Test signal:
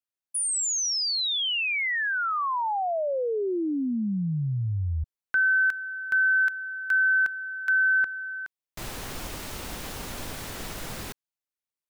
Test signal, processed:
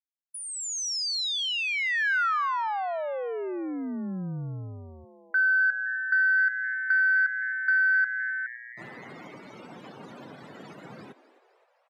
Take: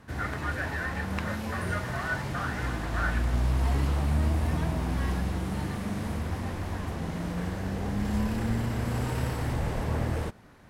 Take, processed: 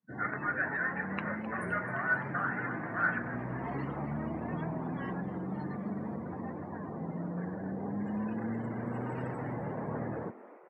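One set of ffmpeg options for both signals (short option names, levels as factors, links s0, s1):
-filter_complex "[0:a]highpass=f=140:w=0.5412,highpass=f=140:w=1.3066,afftdn=nr=35:nf=-38,adynamicequalizer=threshold=0.0141:dfrequency=1500:dqfactor=2.1:tfrequency=1500:tqfactor=2.1:attack=5:release=100:ratio=0.4:range=3:mode=boostabove:tftype=bell,aresample=32000,aresample=44100,acrossover=split=950|6800[s0][s1][s2];[s0]acompressor=threshold=0.0355:ratio=4[s3];[s1]acompressor=threshold=0.0891:ratio=4[s4];[s2]acompressor=threshold=0.00794:ratio=4[s5];[s3][s4][s5]amix=inputs=3:normalize=0,asplit=2[s6][s7];[s7]asplit=6[s8][s9][s10][s11][s12][s13];[s8]adelay=259,afreqshift=120,volume=0.15[s14];[s9]adelay=518,afreqshift=240,volume=0.0881[s15];[s10]adelay=777,afreqshift=360,volume=0.0519[s16];[s11]adelay=1036,afreqshift=480,volume=0.0309[s17];[s12]adelay=1295,afreqshift=600,volume=0.0182[s18];[s13]adelay=1554,afreqshift=720,volume=0.0107[s19];[s14][s15][s16][s17][s18][s19]amix=inputs=6:normalize=0[s20];[s6][s20]amix=inputs=2:normalize=0,acontrast=30,volume=0.422"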